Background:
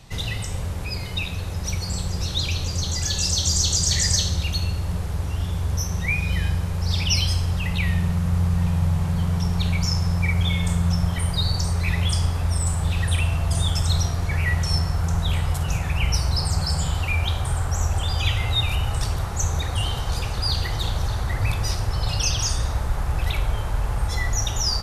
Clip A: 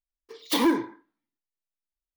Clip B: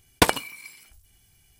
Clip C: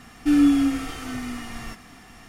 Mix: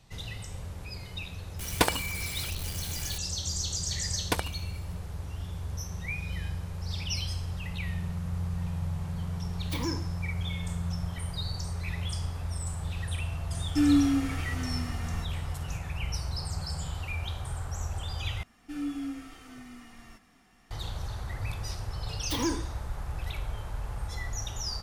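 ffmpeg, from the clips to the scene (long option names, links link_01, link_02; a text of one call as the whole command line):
ffmpeg -i bed.wav -i cue0.wav -i cue1.wav -i cue2.wav -filter_complex "[2:a]asplit=2[link_01][link_02];[1:a]asplit=2[link_03][link_04];[3:a]asplit=2[link_05][link_06];[0:a]volume=-11.5dB[link_07];[link_01]aeval=exprs='val(0)+0.5*0.0501*sgn(val(0))':channel_layout=same[link_08];[link_06]flanger=delay=3.1:depth=2.4:regen=-66:speed=1.2:shape=sinusoidal[link_09];[link_07]asplit=2[link_10][link_11];[link_10]atrim=end=18.434[link_12];[link_09]atrim=end=2.28,asetpts=PTS-STARTPTS,volume=-11dB[link_13];[link_11]atrim=start=20.706[link_14];[link_08]atrim=end=1.59,asetpts=PTS-STARTPTS,volume=-6.5dB,afade=type=in:duration=0.004:curve=hsin,afade=type=out:start_time=1.586:duration=0.004:curve=hsin,adelay=1590[link_15];[link_02]atrim=end=1.59,asetpts=PTS-STARTPTS,volume=-11dB,afade=type=in:duration=0.004:curve=hsin,afade=type=out:start_time=1.586:duration=0.004:curve=hsin,adelay=4100[link_16];[link_03]atrim=end=2.16,asetpts=PTS-STARTPTS,volume=-12.5dB,afade=type=in:duration=0.004:curve=hsin,afade=type=out:start_time=2.156:duration=0.004:curve=hsin,adelay=9200[link_17];[link_05]atrim=end=2.28,asetpts=PTS-STARTPTS,volume=-5.5dB,afade=type=in:duration=0.004:curve=hsin,afade=type=out:start_time=2.276:duration=0.004:curve=hsin,adelay=13500[link_18];[link_04]atrim=end=2.16,asetpts=PTS-STARTPTS,volume=-8.5dB,afade=type=in:duration=0.004:curve=hsin,afade=type=out:start_time=2.156:duration=0.004:curve=hsin,adelay=21790[link_19];[link_12][link_13]acrossfade=duration=0.004:curve1=hsin:curve2=hsin[link_20];[link_20][link_14]acrossfade=duration=0.004:curve1=hsin:curve2=hsin[link_21];[link_21][link_15][link_16][link_17][link_18][link_19]amix=inputs=6:normalize=0" out.wav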